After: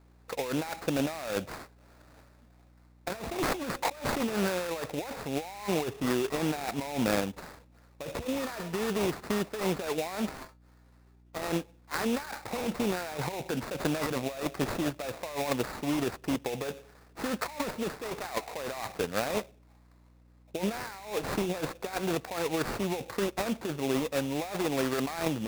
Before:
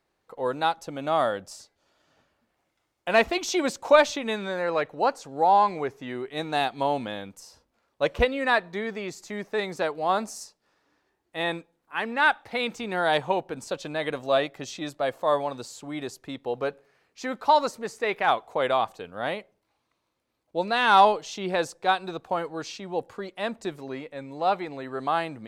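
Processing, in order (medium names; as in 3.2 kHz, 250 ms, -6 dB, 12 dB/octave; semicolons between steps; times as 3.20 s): high-pass 82 Hz; treble shelf 8.5 kHz -11.5 dB; band-stop 5.4 kHz, Q 8.5; compressor with a negative ratio -34 dBFS, ratio -1; sample-rate reducer 3.1 kHz, jitter 20%; 10.29–11.42 s: feedback comb 130 Hz, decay 0.18 s, harmonics all, mix 70%; hum 60 Hz, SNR 26 dB; trim +1 dB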